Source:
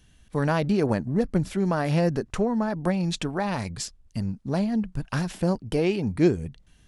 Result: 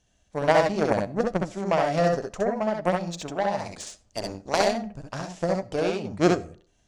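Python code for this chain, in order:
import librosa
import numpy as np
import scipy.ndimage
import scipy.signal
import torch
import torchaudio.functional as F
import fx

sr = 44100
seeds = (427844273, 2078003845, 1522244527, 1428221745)

p1 = fx.spec_clip(x, sr, under_db=20, at=(3.65, 4.7), fade=0.02)
p2 = fx.lowpass_res(p1, sr, hz=6900.0, q=2.9)
p3 = fx.peak_eq(p2, sr, hz=640.0, db=13.0, octaves=0.87)
p4 = fx.cheby_harmonics(p3, sr, harmonics=(3,), levels_db=(-12,), full_scale_db=-5.5)
p5 = p4 + fx.room_early_taps(p4, sr, ms=(65, 75), db=(-3.0, -9.5), dry=0)
y = fx.rev_freeverb(p5, sr, rt60_s=0.49, hf_ratio=0.55, predelay_ms=25, drr_db=20.0)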